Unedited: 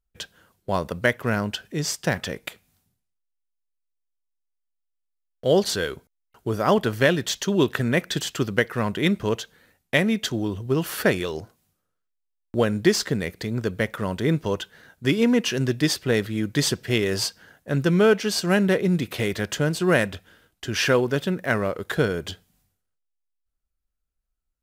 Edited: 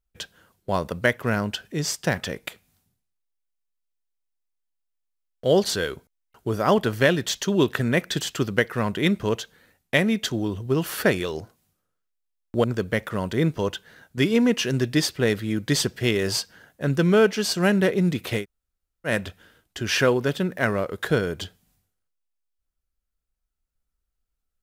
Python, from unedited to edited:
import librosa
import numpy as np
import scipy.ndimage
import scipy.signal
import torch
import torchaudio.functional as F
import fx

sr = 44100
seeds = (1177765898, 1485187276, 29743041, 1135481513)

y = fx.edit(x, sr, fx.cut(start_s=12.64, length_s=0.87),
    fx.room_tone_fill(start_s=19.28, length_s=0.68, crossfade_s=0.1), tone=tone)